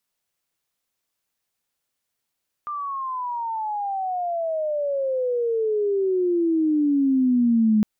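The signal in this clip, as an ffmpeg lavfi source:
-f lavfi -i "aevalsrc='pow(10,(-26.5+12*t/5.16)/20)*sin(2*PI*1200*5.16/log(210/1200)*(exp(log(210/1200)*t/5.16)-1))':d=5.16:s=44100"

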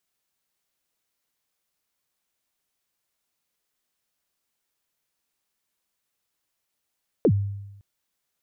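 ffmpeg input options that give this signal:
-f lavfi -i "aevalsrc='0.224*pow(10,-3*t/0.98)*sin(2*PI*(540*0.065/log(100/540)*(exp(log(100/540)*min(t,0.065)/0.065)-1)+100*max(t-0.065,0)))':d=0.56:s=44100"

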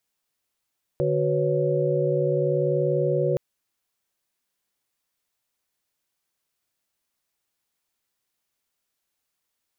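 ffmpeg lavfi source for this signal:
-f lavfi -i "aevalsrc='0.0531*(sin(2*PI*146.83*t)+sin(2*PI*369.99*t)+sin(2*PI*493.88*t)+sin(2*PI*554.37*t))':d=2.37:s=44100"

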